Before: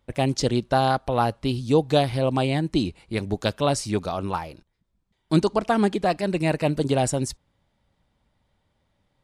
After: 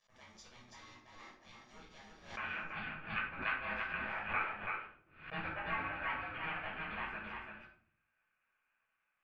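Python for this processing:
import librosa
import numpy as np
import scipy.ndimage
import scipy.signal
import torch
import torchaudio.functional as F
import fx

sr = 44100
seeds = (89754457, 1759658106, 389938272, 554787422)

y = fx.lower_of_two(x, sr, delay_ms=0.75)
y = fx.rider(y, sr, range_db=5, speed_s=0.5)
y = fx.quant_companded(y, sr, bits=6)
y = fx.bandpass_q(y, sr, hz=fx.steps((0.0, 6200.0), (2.37, 2000.0)), q=20.0)
y = y * np.sin(2.0 * np.pi * 490.0 * np.arange(len(y)) / sr)
y = fx.air_absorb(y, sr, metres=450.0)
y = y + 10.0 ** (-4.0 / 20.0) * np.pad(y, (int(333 * sr / 1000.0), 0))[:len(y)]
y = fx.room_shoebox(y, sr, seeds[0], volume_m3=610.0, walls='furnished', distance_m=5.8)
y = fx.pre_swell(y, sr, db_per_s=110.0)
y = y * librosa.db_to_amplitude(8.5)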